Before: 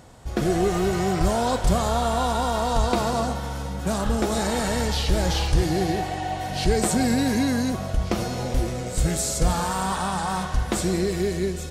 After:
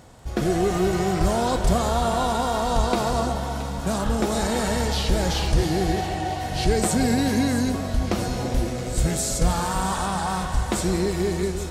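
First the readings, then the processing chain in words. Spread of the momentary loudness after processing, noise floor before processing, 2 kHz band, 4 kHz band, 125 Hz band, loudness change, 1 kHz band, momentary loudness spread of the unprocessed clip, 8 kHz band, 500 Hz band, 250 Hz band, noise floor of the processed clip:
5 LU, -32 dBFS, +0.5 dB, +0.5 dB, +0.5 dB, +0.5 dB, +0.5 dB, 5 LU, +0.5 dB, +0.5 dB, +0.5 dB, -29 dBFS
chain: crackle 17/s -39 dBFS; echo with dull and thin repeats by turns 0.336 s, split 940 Hz, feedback 72%, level -10 dB

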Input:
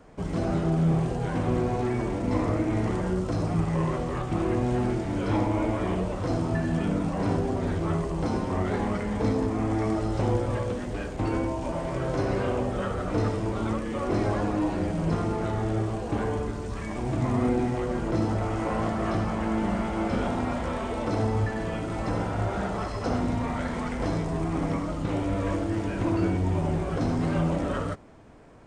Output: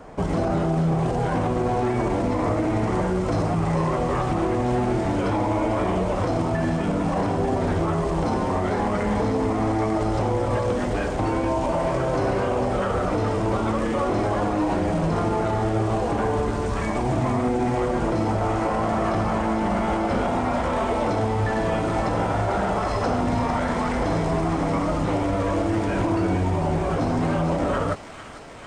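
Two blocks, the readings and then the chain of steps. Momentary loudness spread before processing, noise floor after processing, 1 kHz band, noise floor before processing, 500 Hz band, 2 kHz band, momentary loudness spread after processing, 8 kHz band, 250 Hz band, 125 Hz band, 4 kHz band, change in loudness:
4 LU, -25 dBFS, +8.0 dB, -33 dBFS, +6.0 dB, +5.5 dB, 1 LU, +5.0 dB, +3.0 dB, +2.5 dB, +5.0 dB, +4.5 dB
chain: bell 800 Hz +6 dB 1.6 oct; limiter -22 dBFS, peak gain reduction 10 dB; on a send: thin delay 0.447 s, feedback 77%, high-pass 2100 Hz, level -6.5 dB; on the sum: gain +7 dB

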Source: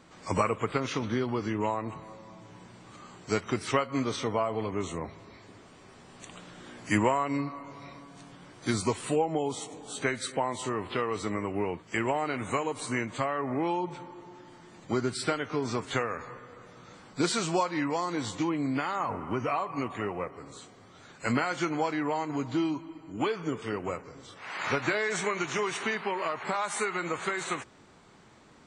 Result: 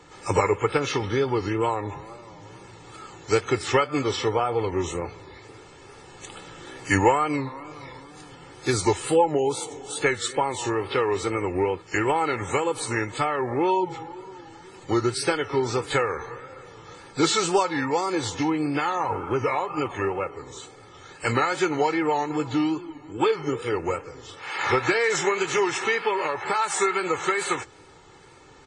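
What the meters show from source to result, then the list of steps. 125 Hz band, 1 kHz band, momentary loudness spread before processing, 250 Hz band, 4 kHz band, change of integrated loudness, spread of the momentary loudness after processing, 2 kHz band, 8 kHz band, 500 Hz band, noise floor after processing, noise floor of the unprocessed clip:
+5.0 dB, +6.5 dB, 19 LU, +4.0 dB, +6.5 dB, +6.0 dB, 19 LU, +6.0 dB, +7.0 dB, +7.5 dB, -48 dBFS, -54 dBFS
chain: wow and flutter 140 cents; comb 2.3 ms, depth 67%; gain +4.5 dB; Vorbis 32 kbps 22050 Hz

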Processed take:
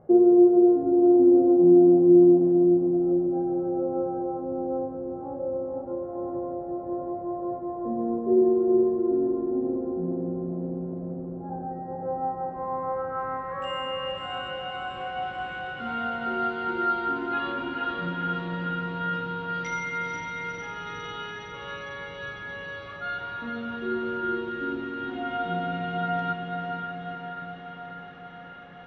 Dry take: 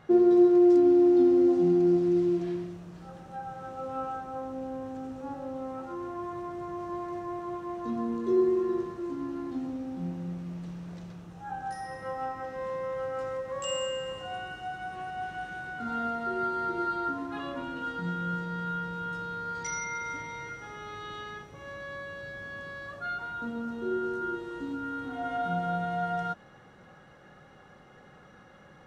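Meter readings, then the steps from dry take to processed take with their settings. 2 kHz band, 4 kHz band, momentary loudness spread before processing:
+4.0 dB, +5.0 dB, 18 LU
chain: low-pass sweep 580 Hz -> 3000 Hz, 12.02–14.27; diffused feedback echo 0.473 s, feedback 67%, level -4.5 dB

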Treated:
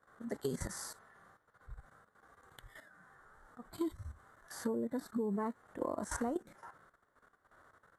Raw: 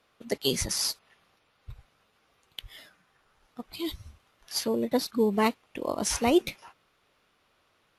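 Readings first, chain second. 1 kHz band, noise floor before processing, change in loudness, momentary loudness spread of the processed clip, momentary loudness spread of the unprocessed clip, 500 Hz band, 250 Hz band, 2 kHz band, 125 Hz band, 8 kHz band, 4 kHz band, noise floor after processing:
-11.0 dB, -70 dBFS, -11.5 dB, 20 LU, 19 LU, -11.0 dB, -9.0 dB, -11.5 dB, -6.5 dB, -14.5 dB, -23.5 dB, -76 dBFS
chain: resonant high shelf 2100 Hz -8.5 dB, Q 3; level quantiser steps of 17 dB; thirty-one-band EQ 2500 Hz -10 dB, 5000 Hz -6 dB, 8000 Hz +11 dB; harmonic-percussive split percussive -12 dB; compressor 16:1, threshold -43 dBFS, peak gain reduction 14.5 dB; gain +10.5 dB

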